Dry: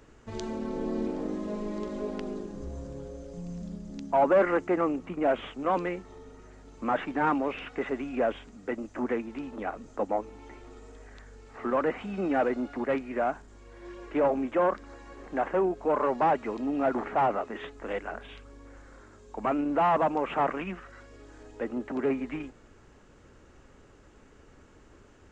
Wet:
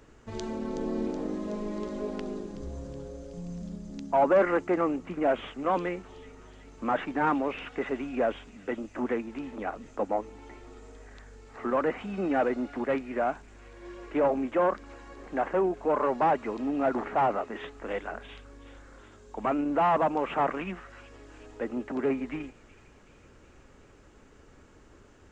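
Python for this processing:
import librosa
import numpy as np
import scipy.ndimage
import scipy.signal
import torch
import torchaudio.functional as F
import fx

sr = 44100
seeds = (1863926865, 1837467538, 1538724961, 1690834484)

y = fx.echo_wet_highpass(x, sr, ms=373, feedback_pct=67, hz=3800.0, wet_db=-9)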